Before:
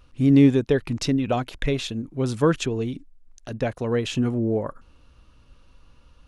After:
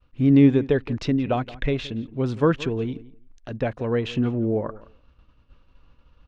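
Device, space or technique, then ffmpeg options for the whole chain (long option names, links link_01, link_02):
hearing-loss simulation: -filter_complex "[0:a]lowpass=3300,asplit=2[link_01][link_02];[link_02]adelay=172,lowpass=frequency=2700:poles=1,volume=-18.5dB,asplit=2[link_03][link_04];[link_04]adelay=172,lowpass=frequency=2700:poles=1,volume=0.16[link_05];[link_01][link_03][link_05]amix=inputs=3:normalize=0,agate=range=-33dB:threshold=-47dB:ratio=3:detection=peak"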